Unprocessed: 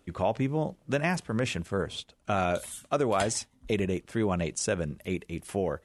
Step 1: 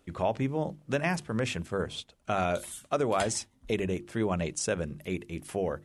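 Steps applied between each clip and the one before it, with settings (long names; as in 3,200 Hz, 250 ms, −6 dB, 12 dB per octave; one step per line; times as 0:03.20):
mains-hum notches 50/100/150/200/250/300/350 Hz
level −1 dB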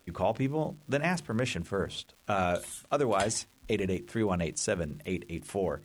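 surface crackle 380 per second −48 dBFS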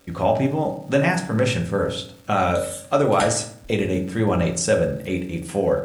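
convolution reverb RT60 0.60 s, pre-delay 3 ms, DRR 1.5 dB
level +6.5 dB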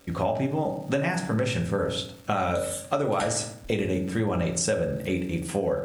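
downward compressor, threshold −22 dBFS, peak gain reduction 9 dB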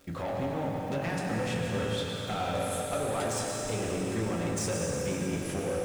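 one scale factor per block 7 bits
soft clipping −24.5 dBFS, distortion −11 dB
dense smooth reverb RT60 4.3 s, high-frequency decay 0.95×, pre-delay 85 ms, DRR −1 dB
level −4.5 dB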